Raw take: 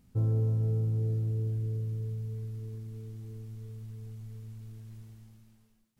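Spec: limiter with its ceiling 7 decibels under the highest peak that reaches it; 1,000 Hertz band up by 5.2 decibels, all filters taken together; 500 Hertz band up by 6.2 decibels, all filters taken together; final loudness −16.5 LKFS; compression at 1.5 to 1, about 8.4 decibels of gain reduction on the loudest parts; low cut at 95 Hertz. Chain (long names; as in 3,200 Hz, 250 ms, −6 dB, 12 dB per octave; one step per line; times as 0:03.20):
high-pass filter 95 Hz
parametric band 500 Hz +6.5 dB
parametric band 1,000 Hz +4.5 dB
downward compressor 1.5 to 1, threshold −49 dBFS
level +28 dB
brickwall limiter −7.5 dBFS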